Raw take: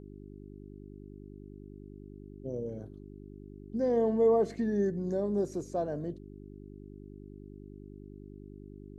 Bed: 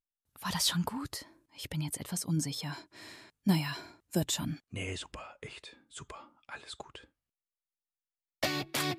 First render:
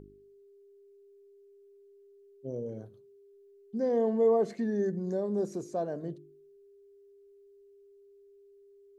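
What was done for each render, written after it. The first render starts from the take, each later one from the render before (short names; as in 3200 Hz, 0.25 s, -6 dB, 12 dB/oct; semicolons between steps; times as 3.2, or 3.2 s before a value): de-hum 50 Hz, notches 7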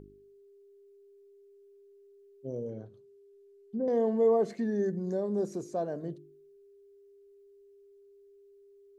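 2.68–3.88 treble ducked by the level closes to 570 Hz, closed at -28.5 dBFS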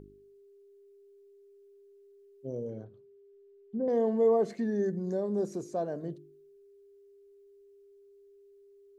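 2.84–3.89 LPF 3000 Hz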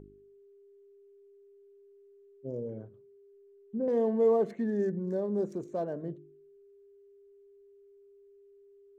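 Wiener smoothing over 9 samples; notch 730 Hz, Q 12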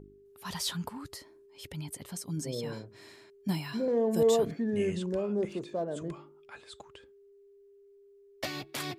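add bed -4.5 dB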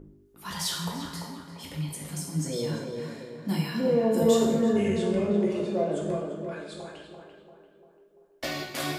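on a send: tape echo 0.342 s, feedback 55%, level -4 dB, low-pass 1600 Hz; on the sum: two-slope reverb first 0.83 s, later 2.6 s, from -26 dB, DRR -3 dB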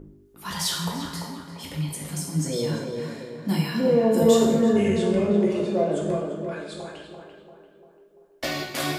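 gain +4 dB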